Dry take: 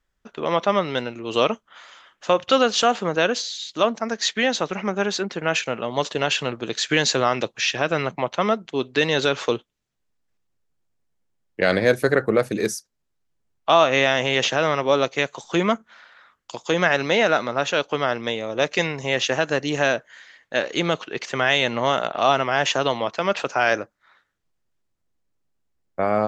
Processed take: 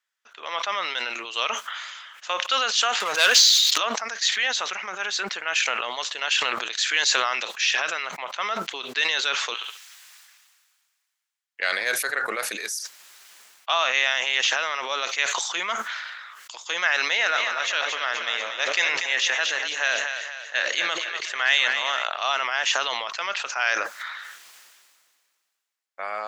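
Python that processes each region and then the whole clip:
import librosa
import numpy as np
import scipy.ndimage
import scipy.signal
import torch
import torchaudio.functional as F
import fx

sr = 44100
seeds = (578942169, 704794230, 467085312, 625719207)

y = fx.chain(x, sr, fx.peak_eq(hz=270.0, db=-3.5, octaves=1.2),
    fx.leveller(passes=3),
    fx.sustainer(db_per_s=21.0), at=(3.0, 3.78))
y = fx.chain(y, sr, fx.highpass(hz=960.0, slope=12),
    fx.room_flutter(wall_m=11.9, rt60_s=0.27), at=(9.54, 11.6))
y = fx.chain(y, sr, fx.peak_eq(hz=1800.0, db=3.0, octaves=0.31),
    fx.echo_split(split_hz=510.0, low_ms=85, high_ms=239, feedback_pct=52, wet_db=-8.0), at=(16.98, 22.04))
y = scipy.signal.sosfilt(scipy.signal.butter(2, 1400.0, 'highpass', fs=sr, output='sos'), y)
y = fx.sustainer(y, sr, db_per_s=31.0)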